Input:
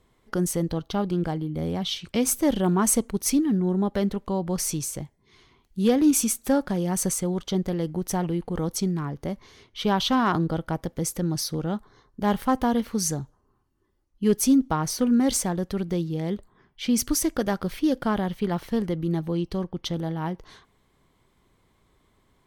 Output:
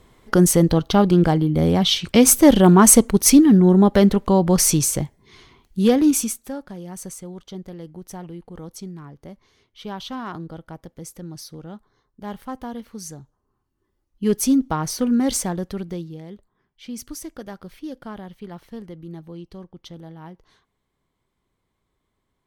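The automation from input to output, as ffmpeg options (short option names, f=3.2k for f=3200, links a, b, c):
-af "volume=21.5dB,afade=t=out:st=4.94:d=1.16:silence=0.398107,afade=t=out:st=6.1:d=0.41:silence=0.251189,afade=t=in:st=13.22:d=1.1:silence=0.281838,afade=t=out:st=15.5:d=0.76:silence=0.251189"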